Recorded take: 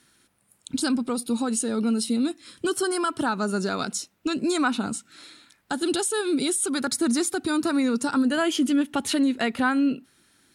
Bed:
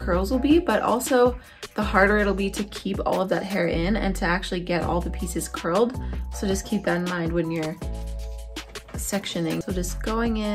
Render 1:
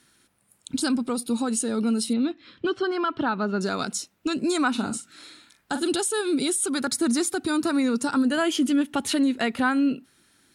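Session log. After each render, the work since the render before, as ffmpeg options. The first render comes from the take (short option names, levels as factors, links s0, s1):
-filter_complex "[0:a]asettb=1/sr,asplit=3[s0][s1][s2];[s0]atrim=end=2.134[s3];[s1]atrim=start=2.13:end=3.61,asetpts=PTS-STARTPTS,afade=t=in:d=0.004:c=qsin,afade=t=out:st=1.476:d=0.004:c=qsin,lowpass=f=3800:w=0.5412,lowpass=f=3800:w=1.3066[s4];[s2]atrim=start=3.606[s5];[s3][s4]acrossfade=d=0.004:c1=hsin:c2=qsin[s6];[s6][s5]acrossfade=d=0.004:c1=qsin:c2=hsin,asettb=1/sr,asplit=3[s7][s8][s9];[s7]atrim=end=4.714[s10];[s8]atrim=start=4.71:end=5.87,asetpts=PTS-STARTPTS,afade=t=in:d=0.004:c=qsin,afade=t=out:st=1.156:d=0.004:c=qsin,asplit=2[s11][s12];[s12]adelay=43,volume=0.355[s13];[s11][s13]amix=inputs=2:normalize=0,atrim=end_sample=51156[s14];[s9]atrim=start=5.866[s15];[s10][s14]acrossfade=d=0.004:c1=hsin:c2=qsin[s16];[s16][s15]acrossfade=d=0.004:c1=qsin:c2=hsin"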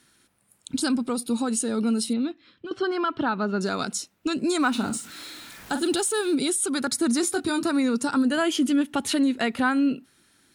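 -filter_complex "[0:a]asettb=1/sr,asplit=3[s0][s1][s2];[s0]atrim=end=4.604[s3];[s1]atrim=start=4.6:end=6.35,asetpts=PTS-STARTPTS,afade=t=in:d=0.004:c=qsin,afade=t=out:st=1.746:d=0.004:c=qsin,aeval=exprs='val(0)+0.5*0.0106*sgn(val(0))':c=same[s4];[s2]atrim=start=6.346[s5];[s3][s4]acrossfade=d=0.004:c1=hsin:c2=qsin[s6];[s6][s5]acrossfade=d=0.004:c1=qsin:c2=hsin,asettb=1/sr,asplit=3[s7][s8][s9];[s7]atrim=end=7.214[s10];[s8]atrim=start=7.21:end=7.63,asetpts=PTS-STARTPTS,afade=t=in:d=0.004:c=qsin,afade=t=out:st=0.416:d=0.004:c=qsin,asplit=2[s11][s12];[s12]adelay=21,volume=0.501[s13];[s11][s13]amix=inputs=2:normalize=0,atrim=end_sample=18522[s14];[s9]atrim=start=7.626[s15];[s10][s14]acrossfade=d=0.004:c1=hsin:c2=qsin[s16];[s16][s15]acrossfade=d=0.004:c1=qsin:c2=hsin,asplit=2[s17][s18];[s17]atrim=end=2.71,asetpts=PTS-STARTPTS,afade=t=out:st=2.03:d=0.68:silence=0.211349[s19];[s18]atrim=start=2.71,asetpts=PTS-STARTPTS,afade=t=in:d=0.004:c=hsin:silence=0.211349[s20];[s19][s20]concat=n=2:v=0:a=1"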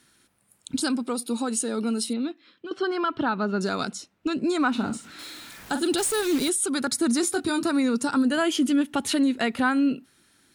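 -filter_complex "[0:a]asettb=1/sr,asplit=3[s0][s1][s2];[s0]atrim=end=0.814[s3];[s1]atrim=start=0.81:end=3.04,asetpts=PTS-STARTPTS,afade=t=in:d=0.004:c=qsin,afade=t=out:st=2.226:d=0.004:c=qsin,highpass=230[s4];[s2]atrim=start=3.036[s5];[s3][s4]acrossfade=d=0.004:c1=hsin:c2=qsin[s6];[s6][s5]acrossfade=d=0.004:c1=qsin:c2=hsin,asettb=1/sr,asplit=3[s7][s8][s9];[s7]atrim=end=3.904[s10];[s8]atrim=start=3.9:end=5.19,asetpts=PTS-STARTPTS,afade=t=in:d=0.004:c=qsin,afade=t=out:st=1.286:d=0.004:c=qsin,aemphasis=mode=reproduction:type=50kf[s11];[s9]atrim=start=5.186[s12];[s10][s11]acrossfade=d=0.004:c1=hsin:c2=qsin[s13];[s13][s12]acrossfade=d=0.004:c1=qsin:c2=hsin,asettb=1/sr,asplit=3[s14][s15][s16];[s14]atrim=end=5.984[s17];[s15]atrim=start=5.98:end=6.49,asetpts=PTS-STARTPTS,afade=t=in:d=0.004:c=qsin,afade=t=out:st=0.506:d=0.004:c=qsin,acrusher=bits=6:dc=4:mix=0:aa=0.000001[s18];[s16]atrim=start=6.486[s19];[s17][s18]acrossfade=d=0.004:c1=hsin:c2=qsin[s20];[s20][s19]acrossfade=d=0.004:c1=qsin:c2=hsin"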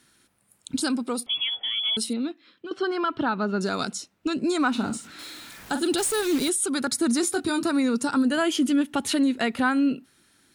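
-filter_complex "[0:a]asettb=1/sr,asplit=3[s0][s1][s2];[s0]atrim=end=1.264[s3];[s1]atrim=start=1.26:end=1.97,asetpts=PTS-STARTPTS,afade=t=in:d=0.004:c=qsin,afade=t=out:st=0.706:d=0.004:c=qsin,lowpass=f=3100:t=q:w=0.5098,lowpass=f=3100:t=q:w=0.6013,lowpass=f=3100:t=q:w=0.9,lowpass=f=3100:t=q:w=2.563,afreqshift=-3600[s4];[s2]atrim=start=1.966[s5];[s3][s4]acrossfade=d=0.004:c1=hsin:c2=qsin[s6];[s6][s5]acrossfade=d=0.004:c1=qsin:c2=hsin,asettb=1/sr,asplit=3[s7][s8][s9];[s7]atrim=end=3.734[s10];[s8]atrim=start=3.73:end=5.07,asetpts=PTS-STARTPTS,afade=t=in:d=0.004:c=qsin,afade=t=out:st=1.336:d=0.004:c=qsin,bass=f=250:g=0,treble=f=4000:g=4[s11];[s9]atrim=start=5.066[s12];[s10][s11]acrossfade=d=0.004:c1=hsin:c2=qsin[s13];[s13][s12]acrossfade=d=0.004:c1=qsin:c2=hsin"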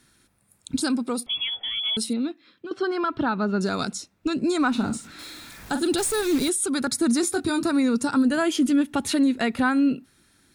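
-af "lowshelf=f=120:g=10.5,bandreject=f=3000:w=14"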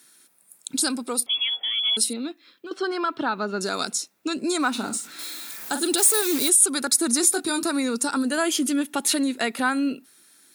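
-af "highpass=310,aemphasis=mode=production:type=50kf"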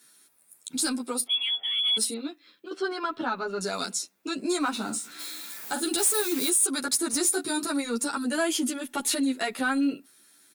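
-filter_complex "[0:a]asoftclip=type=tanh:threshold=0.224,asplit=2[s0][s1];[s1]adelay=10.5,afreqshift=0.38[s2];[s0][s2]amix=inputs=2:normalize=1"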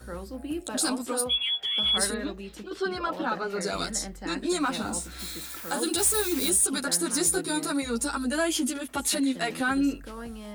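-filter_complex "[1:a]volume=0.178[s0];[0:a][s0]amix=inputs=2:normalize=0"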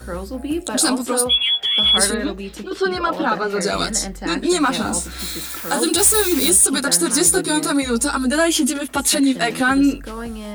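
-af "volume=2.99"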